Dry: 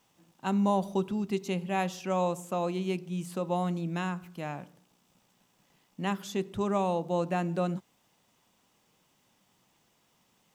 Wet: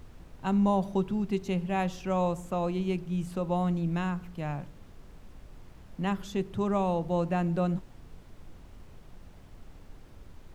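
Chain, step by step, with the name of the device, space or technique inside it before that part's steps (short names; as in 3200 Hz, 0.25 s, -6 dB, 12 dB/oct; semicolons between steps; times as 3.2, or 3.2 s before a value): car interior (bell 140 Hz +8 dB 0.57 oct; high shelf 4400 Hz -7 dB; brown noise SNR 15 dB)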